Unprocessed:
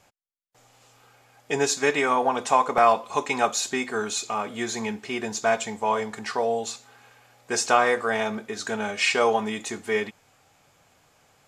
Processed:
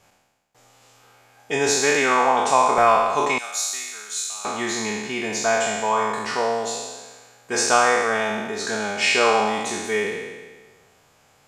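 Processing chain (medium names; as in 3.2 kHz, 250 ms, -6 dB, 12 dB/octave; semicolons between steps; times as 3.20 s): spectral sustain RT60 1.39 s; 3.38–4.45 s: pre-emphasis filter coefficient 0.97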